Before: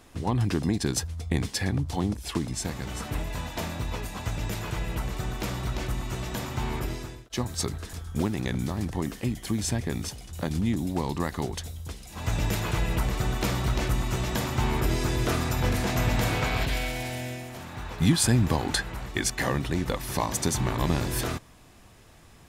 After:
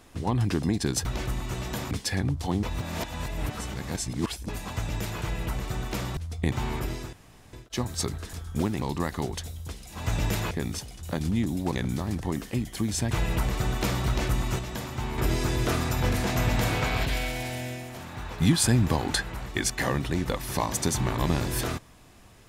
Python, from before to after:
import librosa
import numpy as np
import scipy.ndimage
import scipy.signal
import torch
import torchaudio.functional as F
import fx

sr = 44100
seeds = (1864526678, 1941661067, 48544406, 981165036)

y = fx.edit(x, sr, fx.swap(start_s=1.05, length_s=0.35, other_s=5.66, other_length_s=0.86),
    fx.reverse_span(start_s=2.12, length_s=1.86),
    fx.insert_room_tone(at_s=7.13, length_s=0.4),
    fx.swap(start_s=8.42, length_s=1.39, other_s=11.02, other_length_s=1.69),
    fx.clip_gain(start_s=14.19, length_s=0.59, db=-6.0), tone=tone)